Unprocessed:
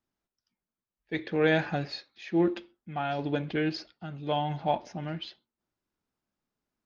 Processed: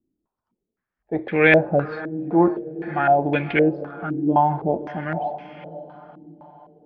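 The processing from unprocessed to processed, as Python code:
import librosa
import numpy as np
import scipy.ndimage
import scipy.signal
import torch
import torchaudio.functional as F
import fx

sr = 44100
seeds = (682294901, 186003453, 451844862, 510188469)

y = fx.echo_diffused(x, sr, ms=538, feedback_pct=50, wet_db=-14)
y = fx.filter_held_lowpass(y, sr, hz=3.9, low_hz=310.0, high_hz=2300.0)
y = y * librosa.db_to_amplitude(6.5)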